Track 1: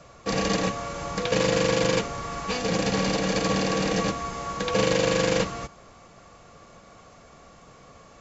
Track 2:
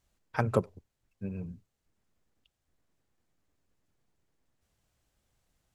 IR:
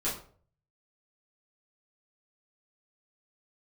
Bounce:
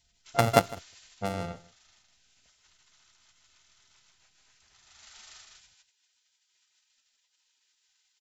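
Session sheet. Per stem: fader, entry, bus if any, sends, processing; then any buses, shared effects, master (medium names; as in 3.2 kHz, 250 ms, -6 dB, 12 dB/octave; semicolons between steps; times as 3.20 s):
0.98 s -6 dB -> 1.26 s -19 dB -> 4.72 s -19 dB -> 5.08 s -7 dB, 0.00 s, no send, echo send -3 dB, peaking EQ 300 Hz +5 dB 0.85 oct; compression 5:1, threshold -30 dBFS, peak gain reduction 12 dB; spectral gate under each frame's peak -25 dB weak
+2.5 dB, 0.00 s, no send, echo send -20.5 dB, sorted samples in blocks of 64 samples; level-controlled noise filter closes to 310 Hz, open at -32 dBFS; peaking EQ 770 Hz +5.5 dB 1.6 oct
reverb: none
echo: delay 156 ms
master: none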